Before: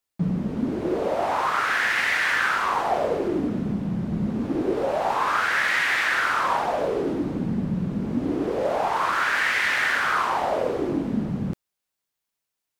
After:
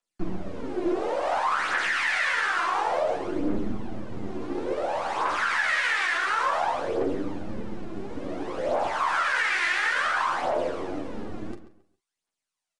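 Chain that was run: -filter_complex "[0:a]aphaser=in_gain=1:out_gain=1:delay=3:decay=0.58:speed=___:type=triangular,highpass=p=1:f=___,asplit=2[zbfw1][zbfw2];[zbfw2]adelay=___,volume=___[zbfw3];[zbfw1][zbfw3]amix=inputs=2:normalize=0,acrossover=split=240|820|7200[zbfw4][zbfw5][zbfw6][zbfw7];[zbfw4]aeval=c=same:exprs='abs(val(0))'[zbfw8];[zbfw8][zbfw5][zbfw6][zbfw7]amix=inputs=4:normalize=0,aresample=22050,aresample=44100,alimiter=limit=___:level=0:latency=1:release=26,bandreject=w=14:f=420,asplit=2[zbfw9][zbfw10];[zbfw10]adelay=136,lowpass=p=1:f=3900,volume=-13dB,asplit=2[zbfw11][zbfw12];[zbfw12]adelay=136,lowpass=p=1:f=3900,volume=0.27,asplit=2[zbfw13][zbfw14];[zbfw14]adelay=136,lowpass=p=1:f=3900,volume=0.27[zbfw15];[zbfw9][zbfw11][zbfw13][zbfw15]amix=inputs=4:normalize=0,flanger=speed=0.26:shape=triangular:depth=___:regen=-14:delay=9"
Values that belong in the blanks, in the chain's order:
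0.57, 41, 43, -12dB, -13.5dB, 5.4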